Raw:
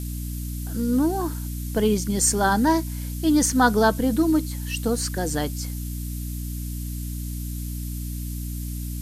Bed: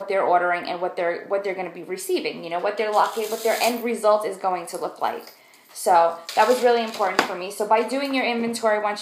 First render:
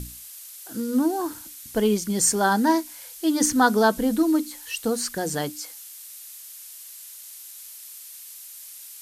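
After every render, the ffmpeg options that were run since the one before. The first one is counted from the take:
ffmpeg -i in.wav -af "bandreject=frequency=60:width_type=h:width=6,bandreject=frequency=120:width_type=h:width=6,bandreject=frequency=180:width_type=h:width=6,bandreject=frequency=240:width_type=h:width=6,bandreject=frequency=300:width_type=h:width=6" out.wav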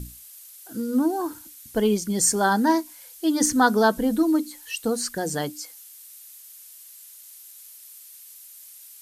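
ffmpeg -i in.wav -af "afftdn=noise_reduction=6:noise_floor=-42" out.wav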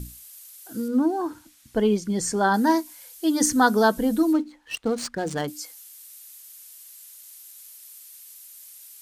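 ffmpeg -i in.wav -filter_complex "[0:a]asettb=1/sr,asplit=3[link_01][link_02][link_03];[link_01]atrim=end=0.884[link_04];[link_02]atrim=start=0.88:end=2.54,asetpts=PTS-STARTPTS,afade=type=in:duration=0.004:curve=qsin,afade=type=out:start_time=1.656:duration=0.004:curve=qsin,aemphasis=mode=reproduction:type=50fm[link_05];[link_03]atrim=start=2.536[link_06];[link_04][link_05]acrossfade=duration=0.004:curve1=hsin:curve2=qsin[link_07];[link_07][link_06]acrossfade=duration=0.004:curve1=qsin:curve2=hsin,asettb=1/sr,asplit=3[link_08][link_09][link_10];[link_08]atrim=end=4.334[link_11];[link_09]atrim=start=4.33:end=5.48,asetpts=PTS-STARTPTS,afade=type=in:duration=0.004:curve=qsin,afade=type=out:start_time=1.146:duration=0.004:curve=qsin,adynamicsmooth=sensitivity=7:basefreq=1500[link_12];[link_10]atrim=start=5.476[link_13];[link_11][link_12]acrossfade=duration=0.004:curve1=hsin:curve2=qsin[link_14];[link_14][link_13]acrossfade=duration=0.004:curve1=qsin:curve2=hsin" out.wav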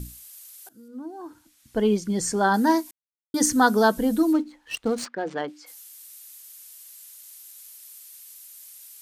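ffmpeg -i in.wav -filter_complex "[0:a]asplit=3[link_01][link_02][link_03];[link_01]afade=type=out:start_time=5.04:duration=0.02[link_04];[link_02]highpass=300,lowpass=2800,afade=type=in:start_time=5.04:duration=0.02,afade=type=out:start_time=5.66:duration=0.02[link_05];[link_03]afade=type=in:start_time=5.66:duration=0.02[link_06];[link_04][link_05][link_06]amix=inputs=3:normalize=0,asplit=4[link_07][link_08][link_09][link_10];[link_07]atrim=end=0.69,asetpts=PTS-STARTPTS,afade=type=out:start_time=0.686:duration=0.004:curve=hsin:silence=0.0944061[link_11];[link_08]atrim=start=0.69:end=2.91,asetpts=PTS-STARTPTS,afade=type=in:duration=1.2:curve=qua:silence=0.0944061,afade=type=out:start_time=2.216:duration=0.004:curve=hsin[link_12];[link_09]atrim=start=2.91:end=3.34,asetpts=PTS-STARTPTS,volume=0[link_13];[link_10]atrim=start=3.34,asetpts=PTS-STARTPTS,afade=type=in:duration=0.004:curve=hsin[link_14];[link_11][link_12][link_13][link_14]concat=n=4:v=0:a=1" out.wav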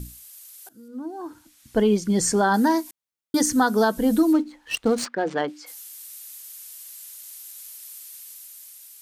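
ffmpeg -i in.wav -af "alimiter=limit=-15dB:level=0:latency=1:release=302,dynaudnorm=framelen=200:gausssize=9:maxgain=4.5dB" out.wav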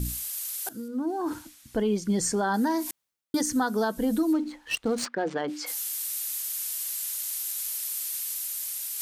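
ffmpeg -i in.wav -af "areverse,acompressor=mode=upward:threshold=-22dB:ratio=2.5,areverse,alimiter=limit=-17.5dB:level=0:latency=1:release=350" out.wav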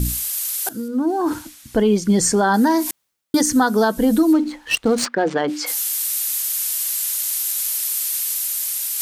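ffmpeg -i in.wav -af "volume=9.5dB" out.wav

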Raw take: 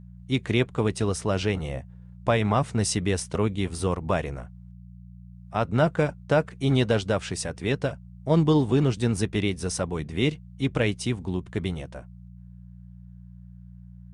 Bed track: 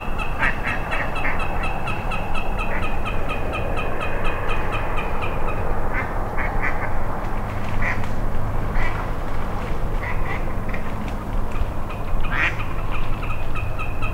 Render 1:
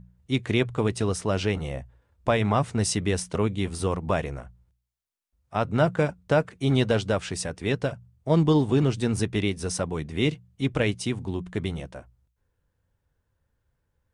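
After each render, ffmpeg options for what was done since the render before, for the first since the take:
ffmpeg -i in.wav -af "bandreject=frequency=60:width_type=h:width=4,bandreject=frequency=120:width_type=h:width=4,bandreject=frequency=180:width_type=h:width=4" out.wav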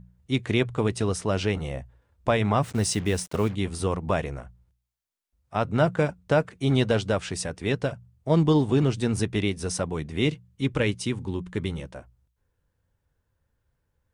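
ffmpeg -i in.wav -filter_complex "[0:a]asplit=3[link_01][link_02][link_03];[link_01]afade=type=out:start_time=2.62:duration=0.02[link_04];[link_02]acrusher=bits=6:mix=0:aa=0.5,afade=type=in:start_time=2.62:duration=0.02,afade=type=out:start_time=3.54:duration=0.02[link_05];[link_03]afade=type=in:start_time=3.54:duration=0.02[link_06];[link_04][link_05][link_06]amix=inputs=3:normalize=0,asettb=1/sr,asplit=3[link_07][link_08][link_09];[link_07]atrim=end=10.324[link_10];[link_08]atrim=start=10.32:end=11.89,asetpts=PTS-STARTPTS,afade=type=in:duration=0.004:curve=qsin,afade=type=out:start_time=1.566:duration=0.004:curve=qsin,asuperstop=centerf=690:order=4:qfactor=4.5[link_11];[link_09]atrim=start=11.886[link_12];[link_10][link_11]acrossfade=duration=0.004:curve1=hsin:curve2=qsin[link_13];[link_13][link_12]acrossfade=duration=0.004:curve1=qsin:curve2=hsin" out.wav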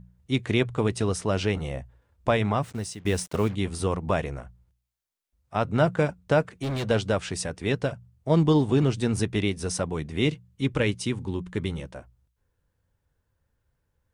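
ffmpeg -i in.wav -filter_complex "[0:a]asplit=3[link_01][link_02][link_03];[link_01]afade=type=out:start_time=6.49:duration=0.02[link_04];[link_02]asoftclip=type=hard:threshold=-26dB,afade=type=in:start_time=6.49:duration=0.02,afade=type=out:start_time=6.89:duration=0.02[link_05];[link_03]afade=type=in:start_time=6.89:duration=0.02[link_06];[link_04][link_05][link_06]amix=inputs=3:normalize=0,asplit=2[link_07][link_08];[link_07]atrim=end=3.05,asetpts=PTS-STARTPTS,afade=type=out:start_time=2.35:duration=0.7:silence=0.112202[link_09];[link_08]atrim=start=3.05,asetpts=PTS-STARTPTS,afade=type=in:duration=0.004:curve=hsin:silence=0.112202[link_10];[link_09][link_10]concat=n=2:v=0:a=1" out.wav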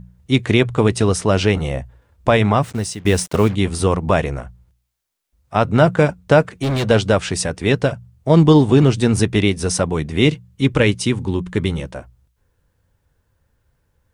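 ffmpeg -i in.wav -af "volume=9.5dB,alimiter=limit=-2dB:level=0:latency=1" out.wav

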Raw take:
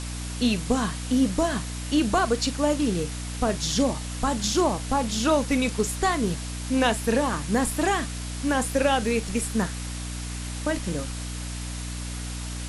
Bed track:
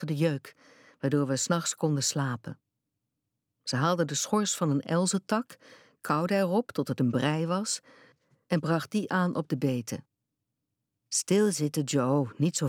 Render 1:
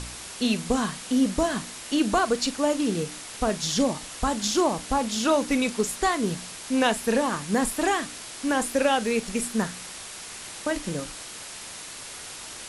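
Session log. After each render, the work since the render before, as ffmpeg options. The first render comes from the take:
ffmpeg -i in.wav -af "bandreject=frequency=60:width_type=h:width=4,bandreject=frequency=120:width_type=h:width=4,bandreject=frequency=180:width_type=h:width=4,bandreject=frequency=240:width_type=h:width=4,bandreject=frequency=300:width_type=h:width=4" out.wav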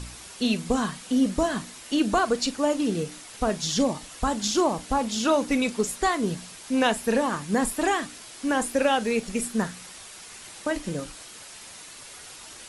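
ffmpeg -i in.wav -af "afftdn=noise_reduction=6:noise_floor=-40" out.wav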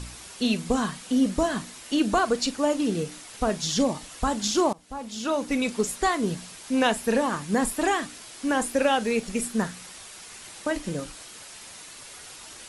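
ffmpeg -i in.wav -filter_complex "[0:a]asplit=2[link_01][link_02];[link_01]atrim=end=4.73,asetpts=PTS-STARTPTS,afade=type=out:start_time=4.726:duration=0.004:curve=hsin:silence=0.0668344[link_03];[link_02]atrim=start=4.73,asetpts=PTS-STARTPTS,afade=type=in:duration=1.04:silence=0.0668344[link_04];[link_03][link_04]concat=n=2:v=0:a=1" out.wav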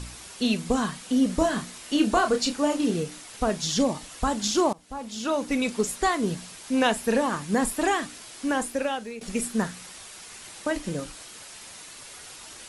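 ffmpeg -i in.wav -filter_complex "[0:a]asettb=1/sr,asplit=3[link_01][link_02][link_03];[link_01]atrim=end=1.274[link_04];[link_02]atrim=start=1.27:end=2.99,asetpts=PTS-STARTPTS,afade=type=in:duration=0.004:curve=qsin,afade=type=out:start_time=1.716:duration=0.004:curve=qsin,asplit=2[link_05][link_06];[link_06]adelay=28,volume=-6.5dB[link_07];[link_05][link_07]amix=inputs=2:normalize=0,atrim=end_sample=75852[link_08];[link_03]atrim=start=2.986[link_09];[link_04][link_08]acrossfade=duration=0.004:curve1=hsin:curve2=qsin[link_10];[link_10][link_09]acrossfade=duration=0.004:curve1=qsin:curve2=hsin,asplit=2[link_11][link_12];[link_11]atrim=end=9.21,asetpts=PTS-STARTPTS,afade=type=out:start_time=8.41:duration=0.8:silence=0.158489[link_13];[link_12]atrim=start=9.21,asetpts=PTS-STARTPTS,afade=type=in:duration=0.004:curve=hsin:silence=0.158489[link_14];[link_13][link_14]concat=n=2:v=0:a=1" out.wav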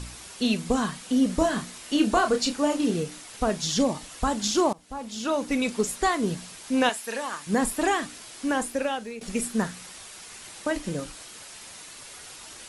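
ffmpeg -i in.wav -filter_complex "[0:a]asettb=1/sr,asplit=3[link_01][link_02][link_03];[link_01]atrim=end=6.894[link_04];[link_02]atrim=start=6.89:end=7.47,asetpts=PTS-STARTPTS,afade=type=in:duration=0.004:curve=qsin,afade=type=out:start_time=0.576:duration=0.004:curve=qsin,highpass=frequency=1400:poles=1[link_05];[link_03]atrim=start=7.466[link_06];[link_04][link_05]acrossfade=duration=0.004:curve1=hsin:curve2=qsin[link_07];[link_07][link_06]acrossfade=duration=0.004:curve1=qsin:curve2=hsin" out.wav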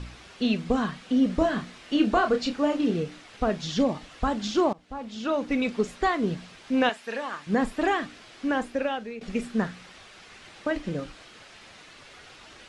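ffmpeg -i in.wav -af "lowpass=3400,equalizer=frequency=950:width_type=o:width=0.25:gain=-4" out.wav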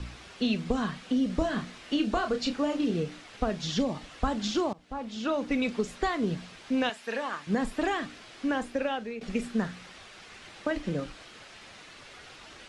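ffmpeg -i in.wav -filter_complex "[0:a]acrossover=split=150|3000[link_01][link_02][link_03];[link_02]acompressor=threshold=-25dB:ratio=6[link_04];[link_01][link_04][link_03]amix=inputs=3:normalize=0" out.wav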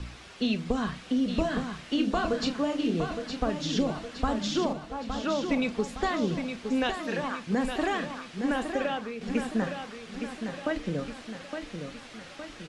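ffmpeg -i in.wav -af "aecho=1:1:864|1728|2592|3456|4320|5184:0.447|0.232|0.121|0.0628|0.0327|0.017" out.wav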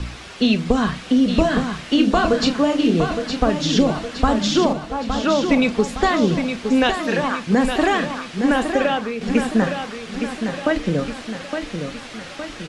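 ffmpeg -i in.wav -af "volume=10.5dB" out.wav

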